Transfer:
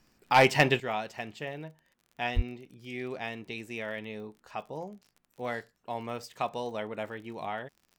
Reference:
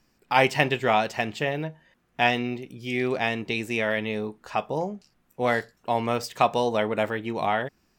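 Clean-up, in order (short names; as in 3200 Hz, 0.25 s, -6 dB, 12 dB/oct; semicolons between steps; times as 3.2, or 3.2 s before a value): clip repair -11 dBFS; de-click; 0.8 gain correction +11 dB; 2.35–2.47 HPF 140 Hz 24 dB/oct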